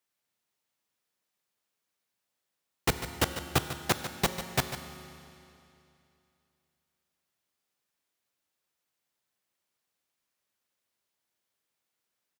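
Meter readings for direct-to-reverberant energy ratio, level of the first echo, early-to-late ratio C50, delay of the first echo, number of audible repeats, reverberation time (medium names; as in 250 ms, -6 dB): 7.0 dB, -11.5 dB, 7.5 dB, 147 ms, 1, 2.8 s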